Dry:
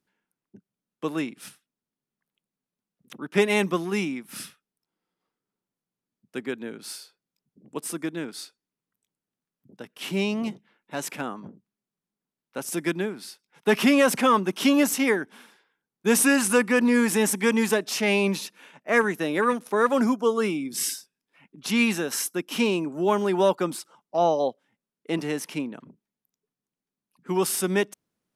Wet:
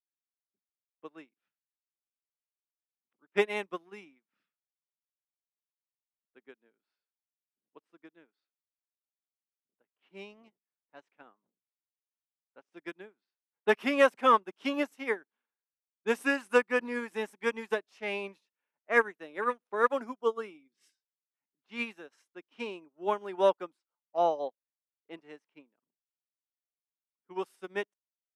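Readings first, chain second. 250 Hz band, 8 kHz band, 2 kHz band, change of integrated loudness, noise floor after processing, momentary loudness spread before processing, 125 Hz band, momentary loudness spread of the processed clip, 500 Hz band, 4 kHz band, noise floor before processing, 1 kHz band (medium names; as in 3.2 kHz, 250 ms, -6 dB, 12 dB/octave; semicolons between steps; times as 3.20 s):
-15.5 dB, -26.5 dB, -6.5 dB, -6.5 dB, under -85 dBFS, 17 LU, under -20 dB, 19 LU, -6.5 dB, -12.5 dB, under -85 dBFS, -4.0 dB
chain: level-controlled noise filter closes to 1.8 kHz, open at -21 dBFS; tone controls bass -14 dB, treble -10 dB; upward expansion 2.5:1, over -42 dBFS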